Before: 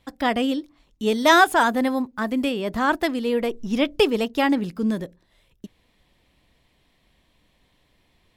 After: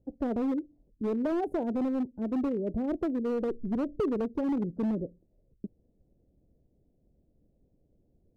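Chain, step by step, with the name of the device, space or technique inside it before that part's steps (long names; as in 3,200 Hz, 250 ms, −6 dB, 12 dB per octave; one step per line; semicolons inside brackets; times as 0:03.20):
inverse Chebyshev low-pass filter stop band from 1,100 Hz, stop band 40 dB
limiter into clipper (brickwall limiter −17.5 dBFS, peak gain reduction 7 dB; hard clipping −21.5 dBFS, distortion −16 dB)
harmonic and percussive parts rebalanced percussive +4 dB
level −4 dB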